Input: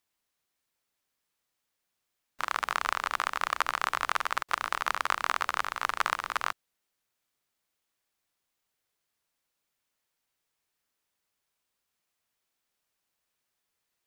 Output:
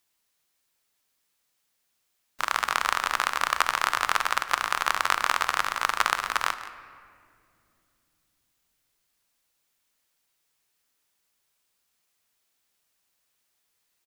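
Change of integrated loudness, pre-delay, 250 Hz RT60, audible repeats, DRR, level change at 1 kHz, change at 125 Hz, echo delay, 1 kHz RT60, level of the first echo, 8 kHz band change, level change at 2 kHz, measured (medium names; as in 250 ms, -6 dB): +4.5 dB, 17 ms, 4.4 s, 1, 10.5 dB, +4.0 dB, no reading, 171 ms, 2.0 s, -16.0 dB, +8.0 dB, +5.0 dB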